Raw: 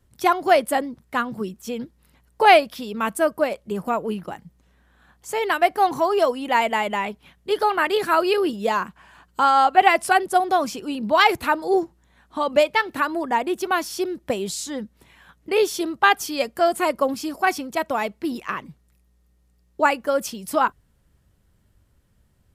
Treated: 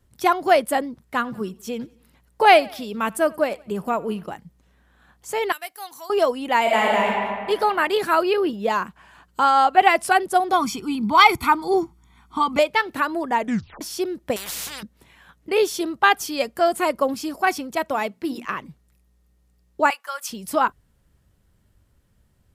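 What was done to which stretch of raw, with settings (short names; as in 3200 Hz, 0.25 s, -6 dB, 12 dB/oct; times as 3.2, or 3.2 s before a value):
1.04–4.33 feedback echo 89 ms, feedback 50%, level -24 dB
5.52–6.1 pre-emphasis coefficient 0.97
6.61–7.09 reverb throw, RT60 1.9 s, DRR -3.5 dB
8.23–8.7 bell 8400 Hz -10 dB 1.5 oct
10.53–12.59 comb 0.9 ms, depth 95%
13.38 tape stop 0.43 s
14.36–14.83 spectral compressor 10:1
17.86–18.45 notches 60/120/180/240/300 Hz
19.9–20.3 Chebyshev high-pass 1000 Hz, order 3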